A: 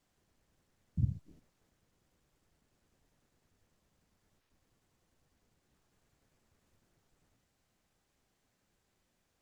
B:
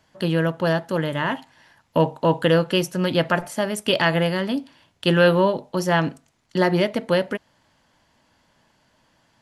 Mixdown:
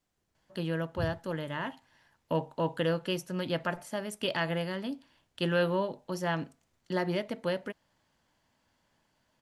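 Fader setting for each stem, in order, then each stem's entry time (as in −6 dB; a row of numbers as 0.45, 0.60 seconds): −4.0, −11.5 decibels; 0.00, 0.35 seconds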